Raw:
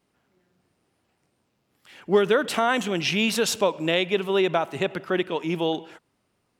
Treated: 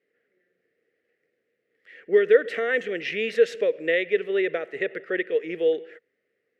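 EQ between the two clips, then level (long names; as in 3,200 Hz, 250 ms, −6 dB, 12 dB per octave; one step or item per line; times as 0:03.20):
pair of resonant band-passes 940 Hz, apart 2 octaves
+8.0 dB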